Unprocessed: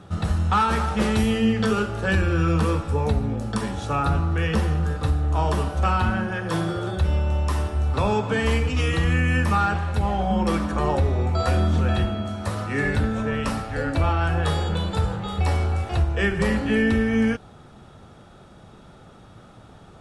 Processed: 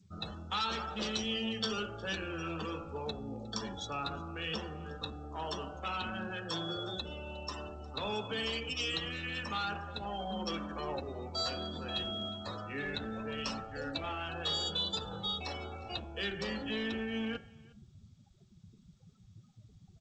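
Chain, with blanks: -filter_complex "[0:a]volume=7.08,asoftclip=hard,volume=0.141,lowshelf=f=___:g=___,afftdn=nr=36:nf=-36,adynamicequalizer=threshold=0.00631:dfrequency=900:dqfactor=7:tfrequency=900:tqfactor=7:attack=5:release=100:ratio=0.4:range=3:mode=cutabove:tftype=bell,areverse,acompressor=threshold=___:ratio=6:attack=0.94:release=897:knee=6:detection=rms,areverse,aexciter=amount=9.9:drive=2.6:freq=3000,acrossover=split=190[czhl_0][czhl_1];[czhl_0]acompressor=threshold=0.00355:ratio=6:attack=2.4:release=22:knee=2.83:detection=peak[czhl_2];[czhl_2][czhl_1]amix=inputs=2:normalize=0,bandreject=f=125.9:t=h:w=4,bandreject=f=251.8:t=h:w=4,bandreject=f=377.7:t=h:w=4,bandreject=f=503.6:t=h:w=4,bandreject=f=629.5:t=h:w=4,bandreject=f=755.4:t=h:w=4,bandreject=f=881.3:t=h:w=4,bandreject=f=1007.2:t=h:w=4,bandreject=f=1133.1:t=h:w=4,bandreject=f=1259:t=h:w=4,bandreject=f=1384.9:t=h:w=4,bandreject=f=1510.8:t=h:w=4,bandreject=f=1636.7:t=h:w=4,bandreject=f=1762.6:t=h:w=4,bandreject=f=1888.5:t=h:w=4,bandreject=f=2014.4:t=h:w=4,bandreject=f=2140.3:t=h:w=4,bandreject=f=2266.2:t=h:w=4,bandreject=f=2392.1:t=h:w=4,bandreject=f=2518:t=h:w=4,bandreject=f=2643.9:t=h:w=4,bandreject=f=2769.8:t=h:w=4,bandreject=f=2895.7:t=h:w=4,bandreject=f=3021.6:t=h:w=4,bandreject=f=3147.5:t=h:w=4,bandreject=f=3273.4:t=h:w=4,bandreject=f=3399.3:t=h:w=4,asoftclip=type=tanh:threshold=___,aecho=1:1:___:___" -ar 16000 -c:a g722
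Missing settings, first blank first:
390, -3, 0.0251, 0.106, 359, 0.0631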